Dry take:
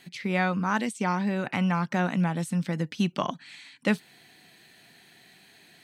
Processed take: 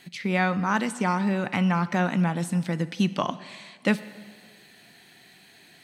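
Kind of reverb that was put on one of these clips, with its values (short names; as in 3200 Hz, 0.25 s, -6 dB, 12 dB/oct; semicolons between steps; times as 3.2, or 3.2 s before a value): plate-style reverb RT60 1.8 s, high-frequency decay 0.85×, DRR 14.5 dB; gain +2 dB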